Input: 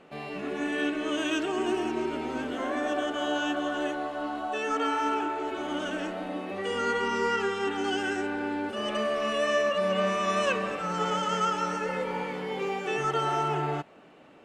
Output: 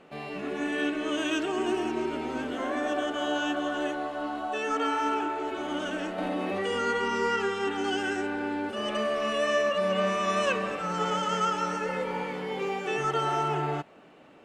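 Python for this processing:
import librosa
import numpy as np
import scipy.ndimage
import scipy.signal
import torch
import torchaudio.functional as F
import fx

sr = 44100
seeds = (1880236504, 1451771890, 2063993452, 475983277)

y = fx.env_flatten(x, sr, amount_pct=70, at=(6.18, 6.83))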